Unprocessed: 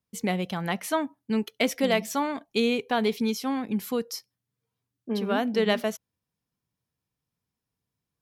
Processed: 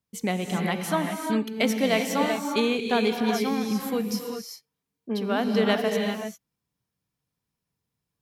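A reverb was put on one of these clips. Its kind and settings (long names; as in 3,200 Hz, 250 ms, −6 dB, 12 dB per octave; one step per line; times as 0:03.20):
reverb whose tail is shaped and stops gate 420 ms rising, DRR 2.5 dB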